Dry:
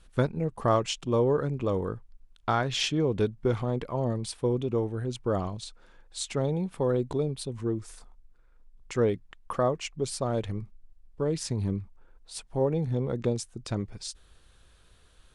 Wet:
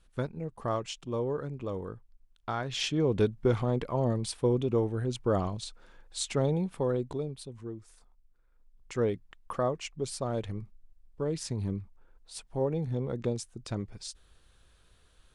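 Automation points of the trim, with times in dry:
2.54 s -7.5 dB
3.13 s +0.5 dB
6.52 s +0.5 dB
7.85 s -12 dB
9.03 s -3.5 dB

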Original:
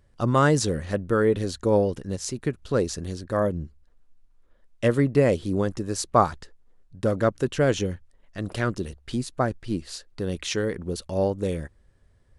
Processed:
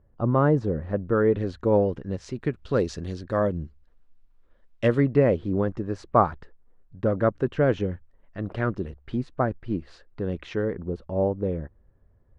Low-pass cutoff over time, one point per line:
0.76 s 1 kHz
1.42 s 2.1 kHz
2.03 s 2.1 kHz
2.77 s 4.1 kHz
4.84 s 4.1 kHz
5.29 s 1.8 kHz
10.37 s 1.8 kHz
10.94 s 1.1 kHz

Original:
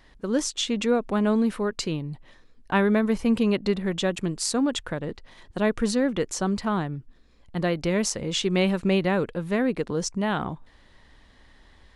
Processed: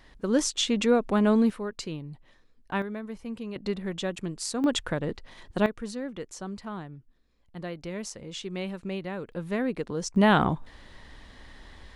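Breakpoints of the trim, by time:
+0.5 dB
from 1.50 s -7 dB
from 2.82 s -14.5 dB
from 3.56 s -6 dB
from 4.64 s +1 dB
from 5.66 s -11.5 dB
from 9.32 s -4.5 dB
from 10.16 s +6 dB

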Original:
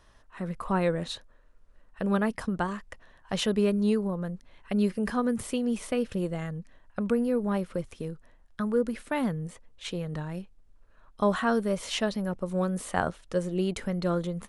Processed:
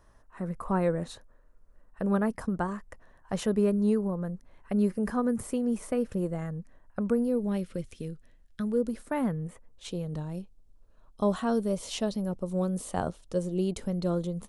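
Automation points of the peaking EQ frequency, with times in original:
peaking EQ -12 dB 1.5 oct
7.09 s 3.3 kHz
7.61 s 960 Hz
8.60 s 960 Hz
9.41 s 6.3 kHz
9.89 s 1.8 kHz

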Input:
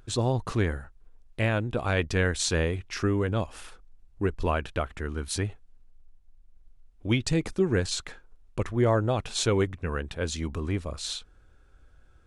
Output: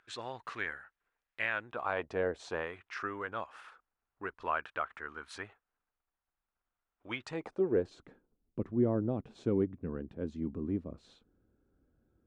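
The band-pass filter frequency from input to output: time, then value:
band-pass filter, Q 1.7
1.51 s 1.8 kHz
2.37 s 490 Hz
2.68 s 1.3 kHz
7.20 s 1.3 kHz
8.04 s 250 Hz

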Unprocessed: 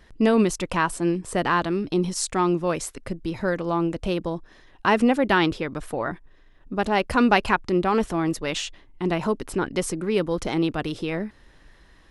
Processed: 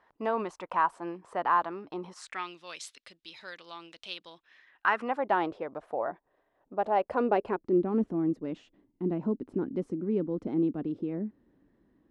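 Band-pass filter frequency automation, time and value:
band-pass filter, Q 2.2
2.11 s 940 Hz
2.54 s 3.7 kHz
4.23 s 3.7 kHz
5.39 s 680 Hz
7.04 s 680 Hz
7.90 s 260 Hz

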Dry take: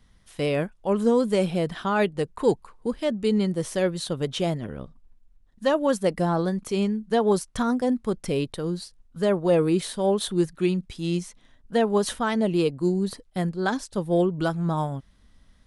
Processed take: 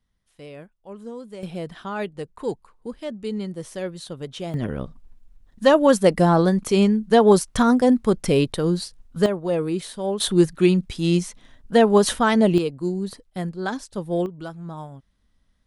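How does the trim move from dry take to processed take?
-15.5 dB
from 1.43 s -6 dB
from 4.54 s +7 dB
from 9.26 s -3 dB
from 10.20 s +6.5 dB
from 12.58 s -2 dB
from 14.26 s -9.5 dB

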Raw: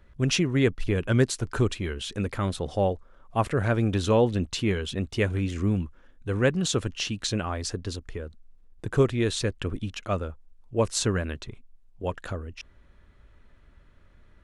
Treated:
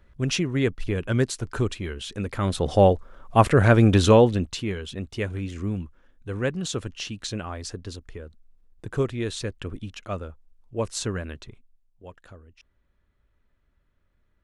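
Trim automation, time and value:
2.26 s -1 dB
2.72 s +8 dB
4.06 s +8 dB
4.67 s -3.5 dB
11.46 s -3.5 dB
12.04 s -13.5 dB

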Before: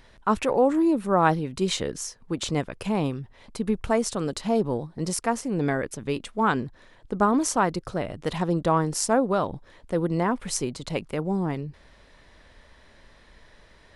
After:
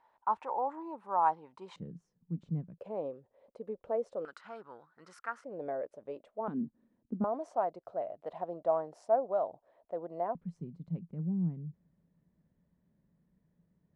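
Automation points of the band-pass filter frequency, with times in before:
band-pass filter, Q 6.3
900 Hz
from 1.76 s 170 Hz
from 2.78 s 540 Hz
from 4.25 s 1.4 kHz
from 5.44 s 600 Hz
from 6.48 s 230 Hz
from 7.24 s 660 Hz
from 10.35 s 170 Hz

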